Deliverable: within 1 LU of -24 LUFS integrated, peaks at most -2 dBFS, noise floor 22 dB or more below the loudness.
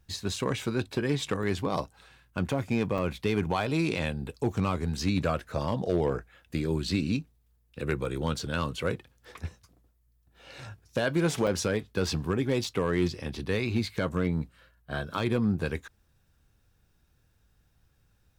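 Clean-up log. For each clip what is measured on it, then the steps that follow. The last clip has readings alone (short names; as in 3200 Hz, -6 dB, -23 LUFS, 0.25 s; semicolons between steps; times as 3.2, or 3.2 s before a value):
clipped 0.3%; flat tops at -17.5 dBFS; dropouts 6; longest dropout 3.3 ms; loudness -30.0 LUFS; peak -17.5 dBFS; loudness target -24.0 LUFS
-> clip repair -17.5 dBFS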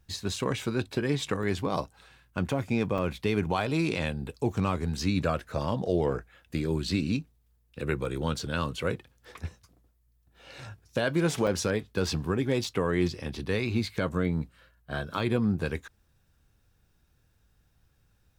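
clipped 0.0%; dropouts 6; longest dropout 3.3 ms
-> interpolate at 0.36/1.43/2.98/8.05/11.47/12.64, 3.3 ms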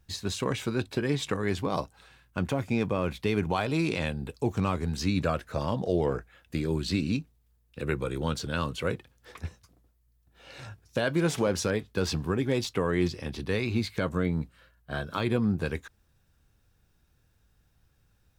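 dropouts 0; loudness -30.0 LUFS; peak -14.5 dBFS; loudness target -24.0 LUFS
-> gain +6 dB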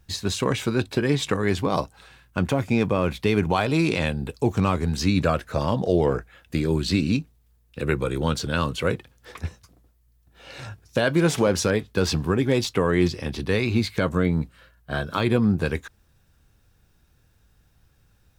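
loudness -24.0 LUFS; peak -8.5 dBFS; noise floor -62 dBFS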